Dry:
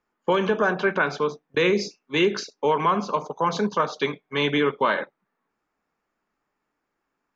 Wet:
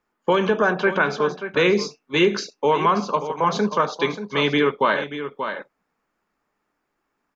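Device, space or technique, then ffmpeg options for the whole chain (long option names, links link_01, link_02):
ducked delay: -filter_complex "[0:a]asplit=3[link_01][link_02][link_03];[link_02]adelay=583,volume=-6.5dB[link_04];[link_03]apad=whole_len=350113[link_05];[link_04][link_05]sidechaincompress=threshold=-23dB:ratio=8:attack=37:release=1320[link_06];[link_01][link_06]amix=inputs=2:normalize=0,volume=2.5dB"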